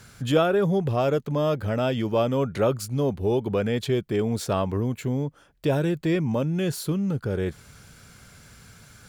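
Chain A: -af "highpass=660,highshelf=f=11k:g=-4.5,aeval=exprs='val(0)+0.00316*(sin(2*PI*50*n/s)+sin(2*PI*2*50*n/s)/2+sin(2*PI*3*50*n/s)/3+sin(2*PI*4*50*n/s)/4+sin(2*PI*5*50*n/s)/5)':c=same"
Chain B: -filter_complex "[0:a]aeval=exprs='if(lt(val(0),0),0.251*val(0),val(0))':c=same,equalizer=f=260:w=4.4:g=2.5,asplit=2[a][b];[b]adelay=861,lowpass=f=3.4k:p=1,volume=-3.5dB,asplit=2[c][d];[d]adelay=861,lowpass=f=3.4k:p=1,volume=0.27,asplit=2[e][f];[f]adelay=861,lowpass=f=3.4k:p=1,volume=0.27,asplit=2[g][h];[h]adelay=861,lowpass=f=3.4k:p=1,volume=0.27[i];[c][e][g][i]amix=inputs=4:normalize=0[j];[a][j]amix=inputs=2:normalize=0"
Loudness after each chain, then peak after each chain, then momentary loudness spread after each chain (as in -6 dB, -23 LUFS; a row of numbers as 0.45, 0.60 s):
-32.0, -27.0 LUFS; -12.5, -9.5 dBFS; 20, 8 LU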